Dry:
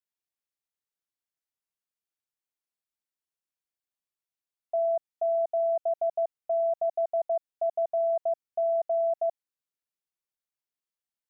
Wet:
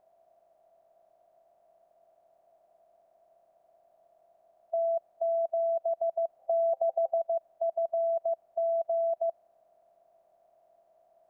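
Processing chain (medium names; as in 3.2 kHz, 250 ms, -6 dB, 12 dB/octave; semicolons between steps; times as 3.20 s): spectral levelling over time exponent 0.4; 6.39–7.18 s: small resonant body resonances 530/780 Hz, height 12 dB; trim -2.5 dB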